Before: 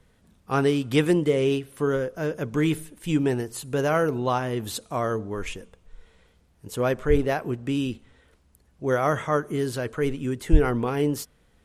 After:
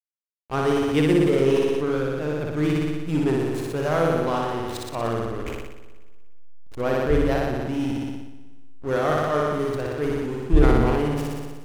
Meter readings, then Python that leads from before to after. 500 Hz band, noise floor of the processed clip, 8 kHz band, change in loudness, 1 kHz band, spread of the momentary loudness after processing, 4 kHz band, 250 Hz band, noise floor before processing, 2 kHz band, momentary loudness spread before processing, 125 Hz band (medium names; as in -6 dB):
+2.0 dB, -36 dBFS, -3.5 dB, +2.0 dB, +2.0 dB, 12 LU, 0.0 dB, +2.5 dB, -62 dBFS, +0.5 dB, 10 LU, +2.0 dB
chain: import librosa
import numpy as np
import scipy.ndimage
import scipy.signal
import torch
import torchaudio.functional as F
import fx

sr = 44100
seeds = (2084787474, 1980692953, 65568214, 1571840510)

y = fx.backlash(x, sr, play_db=-24.5)
y = fx.room_flutter(y, sr, wall_m=10.3, rt60_s=1.4)
y = fx.sustainer(y, sr, db_per_s=25.0)
y = y * librosa.db_to_amplitude(-1.5)